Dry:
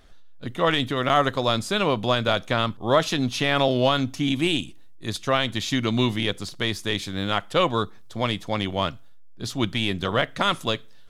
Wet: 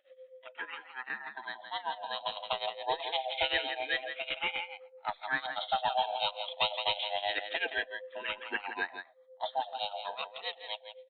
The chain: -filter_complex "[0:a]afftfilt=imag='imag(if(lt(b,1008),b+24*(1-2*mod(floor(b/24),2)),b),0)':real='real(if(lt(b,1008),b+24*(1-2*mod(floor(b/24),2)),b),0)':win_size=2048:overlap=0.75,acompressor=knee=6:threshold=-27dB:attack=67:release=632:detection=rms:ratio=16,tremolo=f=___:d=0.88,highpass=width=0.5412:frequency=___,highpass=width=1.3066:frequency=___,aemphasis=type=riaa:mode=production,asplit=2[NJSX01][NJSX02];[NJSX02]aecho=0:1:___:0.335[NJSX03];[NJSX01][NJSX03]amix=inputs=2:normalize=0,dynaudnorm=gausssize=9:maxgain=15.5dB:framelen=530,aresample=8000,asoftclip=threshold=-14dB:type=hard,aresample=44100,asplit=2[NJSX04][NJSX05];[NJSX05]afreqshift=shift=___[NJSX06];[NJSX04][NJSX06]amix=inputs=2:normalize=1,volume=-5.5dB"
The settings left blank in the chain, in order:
7.8, 270, 270, 167, -0.26